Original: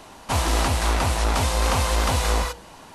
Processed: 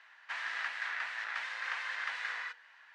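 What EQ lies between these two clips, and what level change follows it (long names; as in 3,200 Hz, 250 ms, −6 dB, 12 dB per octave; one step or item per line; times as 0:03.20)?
four-pole ladder band-pass 1,900 Hz, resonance 70%
high-frequency loss of the air 53 metres
0.0 dB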